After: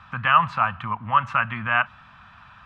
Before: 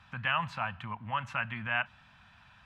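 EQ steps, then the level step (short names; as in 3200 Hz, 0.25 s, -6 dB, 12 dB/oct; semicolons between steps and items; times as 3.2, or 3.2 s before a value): LPF 3300 Hz 6 dB/oct; bell 1200 Hz +11 dB 0.41 oct; +8.0 dB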